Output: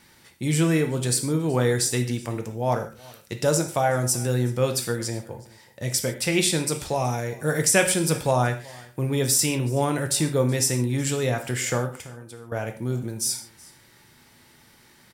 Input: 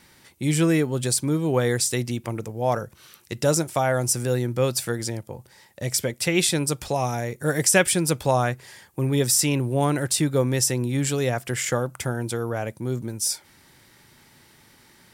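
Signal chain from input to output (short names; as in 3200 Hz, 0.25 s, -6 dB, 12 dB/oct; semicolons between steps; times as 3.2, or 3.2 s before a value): 11.9–12.52 compressor 10:1, threshold -38 dBFS, peak gain reduction 16 dB; echo 0.374 s -23.5 dB; non-linear reverb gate 0.17 s falling, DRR 5 dB; gain -1.5 dB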